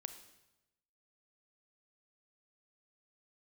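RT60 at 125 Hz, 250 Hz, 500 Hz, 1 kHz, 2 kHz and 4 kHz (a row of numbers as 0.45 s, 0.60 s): 1.2 s, 1.0 s, 1.0 s, 0.95 s, 0.90 s, 0.85 s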